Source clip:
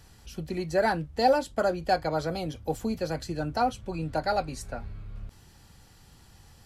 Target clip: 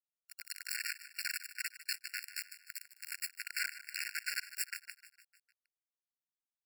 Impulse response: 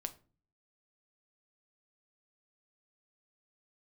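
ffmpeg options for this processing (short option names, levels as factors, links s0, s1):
-filter_complex "[0:a]asettb=1/sr,asplit=3[s0][s1][s2];[s0]atrim=end=1.204[s3];[s1]atrim=start=1.2:end=3.47,asetpts=PTS-STARTPTS,afade=t=in:d=0.004:c=qsin,afade=t=out:st=2.266:d=0.004:c=qsin,highpass=850[s4];[s2]atrim=start=3.466[s5];[s3][s4]acrossfade=d=0.004:c1=hsin:c2=qsin[s6];[s6][s5]acrossfade=d=0.004:c1=qsin:c2=hsin,acompressor=threshold=0.02:ratio=4,aemphasis=mode=production:type=50fm[s7];[1:a]atrim=start_sample=2205,afade=t=out:st=0.25:d=0.01,atrim=end_sample=11466[s8];[s7][s8]afir=irnorm=-1:irlink=0,flanger=delay=5.2:depth=8.4:regen=-26:speed=0.75:shape=triangular,afftfilt=real='hypot(re,im)*cos(2*PI*random(0))':imag='hypot(re,im)*sin(2*PI*random(1))':win_size=512:overlap=0.75,acrusher=bits=4:dc=4:mix=0:aa=0.000001,aecho=1:1:152|304|456|608|760:0.188|0.104|0.057|0.0313|0.0172,dynaudnorm=f=240:g=3:m=3.76,afftfilt=real='re*eq(mod(floor(b*sr/1024/1400),2),1)':imag='im*eq(mod(floor(b*sr/1024/1400),2),1)':win_size=1024:overlap=0.75,volume=1.78"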